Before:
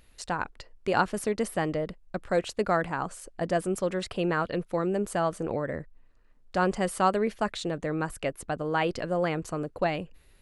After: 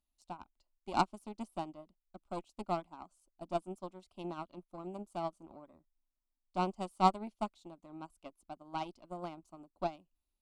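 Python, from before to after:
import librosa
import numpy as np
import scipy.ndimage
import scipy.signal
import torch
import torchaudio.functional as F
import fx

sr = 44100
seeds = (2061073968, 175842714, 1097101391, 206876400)

y = fx.cheby_harmonics(x, sr, harmonics=(4,), levels_db=(-14,), full_scale_db=-10.0)
y = fx.fixed_phaser(y, sr, hz=470.0, stages=6)
y = fx.upward_expand(y, sr, threshold_db=-38.0, expansion=2.5)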